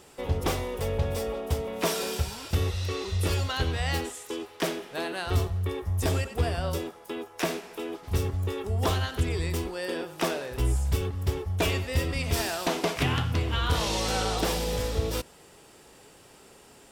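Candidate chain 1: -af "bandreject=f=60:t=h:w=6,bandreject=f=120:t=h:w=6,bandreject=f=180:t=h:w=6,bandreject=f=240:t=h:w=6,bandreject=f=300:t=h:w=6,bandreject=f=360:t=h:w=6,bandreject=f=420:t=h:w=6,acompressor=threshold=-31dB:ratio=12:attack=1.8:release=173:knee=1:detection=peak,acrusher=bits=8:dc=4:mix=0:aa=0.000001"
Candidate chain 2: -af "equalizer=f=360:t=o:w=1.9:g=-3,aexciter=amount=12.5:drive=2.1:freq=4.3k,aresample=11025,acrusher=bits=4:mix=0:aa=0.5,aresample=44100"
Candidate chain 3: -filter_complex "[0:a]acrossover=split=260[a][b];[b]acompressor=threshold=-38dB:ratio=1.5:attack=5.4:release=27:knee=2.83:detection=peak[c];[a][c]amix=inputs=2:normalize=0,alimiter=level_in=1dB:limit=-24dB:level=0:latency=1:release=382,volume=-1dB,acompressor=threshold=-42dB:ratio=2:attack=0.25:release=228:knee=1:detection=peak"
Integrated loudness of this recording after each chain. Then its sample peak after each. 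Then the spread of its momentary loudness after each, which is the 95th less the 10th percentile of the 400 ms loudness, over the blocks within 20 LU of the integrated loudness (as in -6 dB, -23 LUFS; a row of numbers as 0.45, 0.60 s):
-36.5, -26.5, -43.5 LUFS; -19.5, -8.0, -31.5 dBFS; 4, 9, 4 LU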